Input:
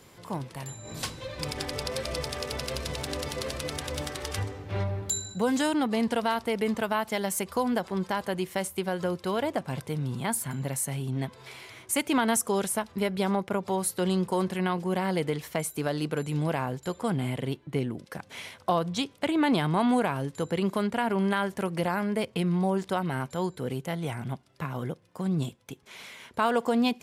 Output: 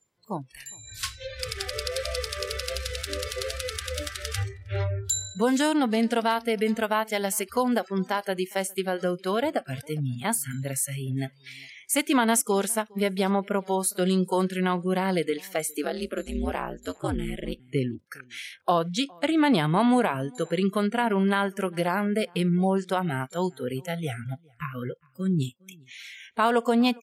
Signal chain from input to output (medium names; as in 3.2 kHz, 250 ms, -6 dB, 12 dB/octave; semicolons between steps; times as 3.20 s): spectral noise reduction 28 dB; echo from a far wall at 70 m, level -27 dB; 15.84–17.60 s: ring modulator 93 Hz; trim +3 dB